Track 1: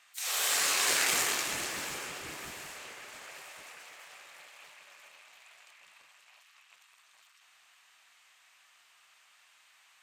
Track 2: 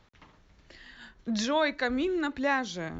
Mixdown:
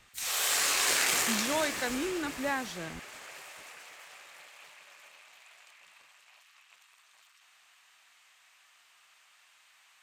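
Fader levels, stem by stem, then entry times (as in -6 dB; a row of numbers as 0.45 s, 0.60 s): +0.5 dB, -5.0 dB; 0.00 s, 0.00 s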